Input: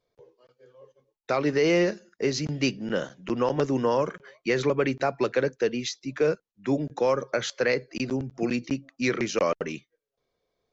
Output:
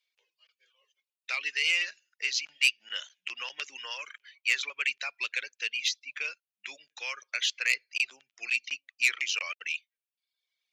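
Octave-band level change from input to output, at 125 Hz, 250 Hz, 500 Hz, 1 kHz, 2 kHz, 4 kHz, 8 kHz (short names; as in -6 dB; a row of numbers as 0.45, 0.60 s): under -40 dB, under -35 dB, -29.5 dB, -15.0 dB, +4.5 dB, +5.5 dB, n/a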